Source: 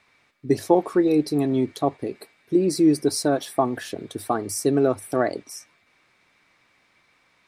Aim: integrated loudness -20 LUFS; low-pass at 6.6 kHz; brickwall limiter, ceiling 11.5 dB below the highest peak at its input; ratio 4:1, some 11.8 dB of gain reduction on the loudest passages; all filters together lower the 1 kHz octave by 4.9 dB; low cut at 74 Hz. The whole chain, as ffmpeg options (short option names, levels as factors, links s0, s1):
-af "highpass=74,lowpass=6600,equalizer=f=1000:t=o:g=-7.5,acompressor=threshold=0.0355:ratio=4,volume=8.41,alimiter=limit=0.316:level=0:latency=1"